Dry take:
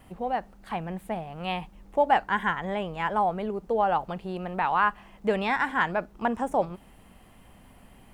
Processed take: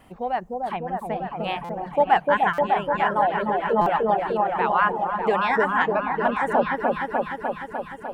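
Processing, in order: high shelf 4500 Hz -5.5 dB; repeats that get brighter 0.3 s, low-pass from 750 Hz, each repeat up 1 oct, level 0 dB; reverb removal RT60 0.78 s; low shelf 200 Hz -8 dB; stuck buffer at 1.64/2.53/3.81, samples 256, times 8; gain +4 dB

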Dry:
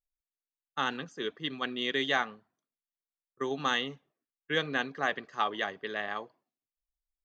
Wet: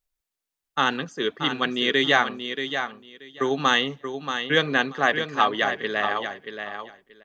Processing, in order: feedback echo 0.631 s, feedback 17%, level -8 dB; gain +9 dB

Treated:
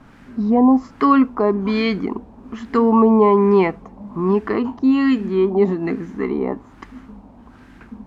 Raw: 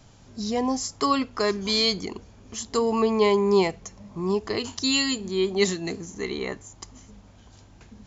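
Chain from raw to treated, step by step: fifteen-band EQ 100 Hz -7 dB, 250 Hz +10 dB, 630 Hz -3 dB, 2500 Hz +4 dB; in parallel at -2 dB: limiter -14 dBFS, peak gain reduction 9 dB; on the sum: added noise violet -34 dBFS; LFO low-pass sine 1.2 Hz 830–1700 Hz

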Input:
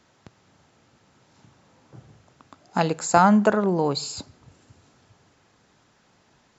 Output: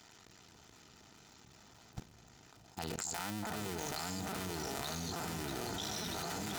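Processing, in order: cycle switcher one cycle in 2, muted; echo with dull and thin repeats by turns 0.283 s, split 1500 Hz, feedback 82%, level -13 dB; echoes that change speed 0.395 s, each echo -2 st, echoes 2, each echo -6 dB; in parallel at +2.5 dB: limiter -13 dBFS, peak gain reduction 10 dB; on the sum: transient shaper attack -4 dB, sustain +8 dB; bell 84 Hz +2 dB 2.5 oct; reverse; compressor 16:1, threshold -30 dBFS, peak gain reduction 22 dB; reverse; high shelf 2500 Hz +10.5 dB; notch comb 550 Hz; level quantiser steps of 20 dB

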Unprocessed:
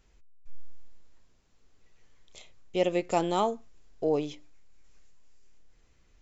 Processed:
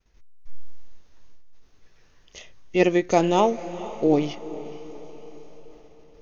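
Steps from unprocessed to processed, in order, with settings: expander -56 dBFS; diffused feedback echo 0.466 s, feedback 52%, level -15 dB; formant shift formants -2 st; gain +7.5 dB

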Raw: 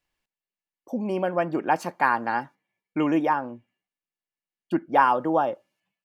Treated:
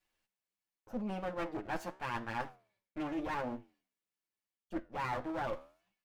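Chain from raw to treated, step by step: minimum comb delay 9.4 ms; reverse; compressor 10:1, threshold -34 dBFS, peak gain reduction 19.5 dB; reverse; flange 0.84 Hz, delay 9.5 ms, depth 7.2 ms, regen -82%; gain +4 dB

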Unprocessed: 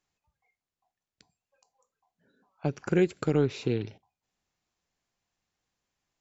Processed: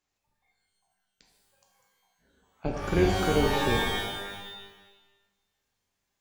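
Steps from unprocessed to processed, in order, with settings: octaver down 2 oct, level +3 dB; low shelf 150 Hz -6.5 dB; shimmer reverb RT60 1.1 s, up +12 st, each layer -2 dB, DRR 0.5 dB; gain -1.5 dB

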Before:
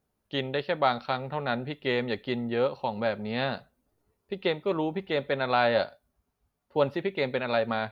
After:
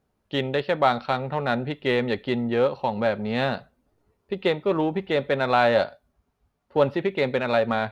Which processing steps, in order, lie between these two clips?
LPF 3700 Hz 6 dB/oct; in parallel at -12 dB: hard clip -29.5 dBFS, distortion -6 dB; on the sum: gain +4 dB

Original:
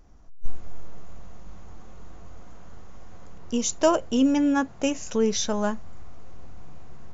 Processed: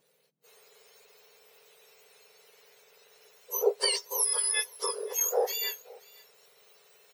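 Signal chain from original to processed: spectrum mirrored in octaves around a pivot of 1700 Hz; bell 5700 Hz +3 dB 0.2 oct; on a send: echo 0.528 s -23.5 dB; on the sum: gain -2 dB

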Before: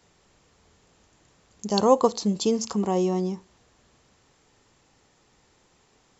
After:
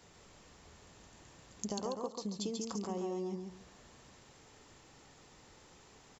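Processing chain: compressor 12:1, threshold -38 dBFS, peak gain reduction 26 dB; on a send: feedback echo 0.139 s, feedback 23%, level -4.5 dB; on the sum: gain +1.5 dB

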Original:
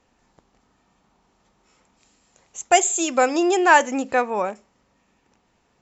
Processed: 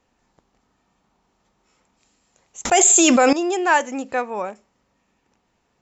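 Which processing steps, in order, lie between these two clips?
2.65–3.33 fast leveller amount 100%; gain -3 dB

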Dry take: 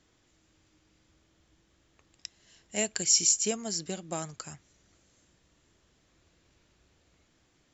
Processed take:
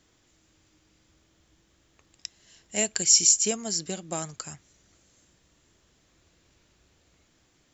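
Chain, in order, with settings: high shelf 5800 Hz +5 dB; gain +2 dB

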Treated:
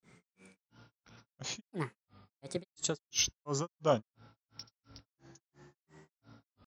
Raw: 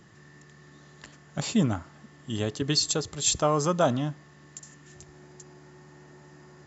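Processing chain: grains 0.237 s, grains 2.9/s, pitch spread up and down by 7 st; gain -4.5 dB

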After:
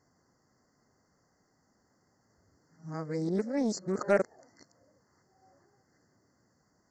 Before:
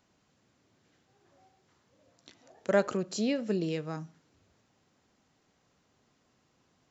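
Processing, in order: whole clip reversed; FFT band-reject 2100–4300 Hz; Doppler distortion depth 0.19 ms

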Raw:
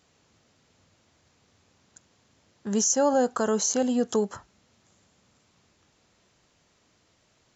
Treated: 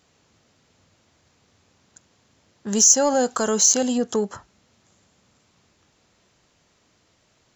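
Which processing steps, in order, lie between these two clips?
2.68–3.98 high shelf 2700 Hz +11 dB; in parallel at -9 dB: soft clip -21 dBFS, distortion -7 dB

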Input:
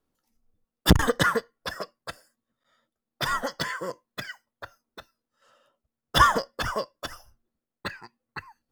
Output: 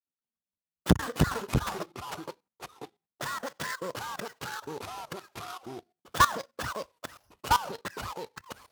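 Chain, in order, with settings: switching dead time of 0.11 ms; HPF 81 Hz 12 dB/oct; gate with hold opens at -58 dBFS; level quantiser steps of 17 dB; echoes that change speed 0.133 s, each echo -3 st, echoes 2

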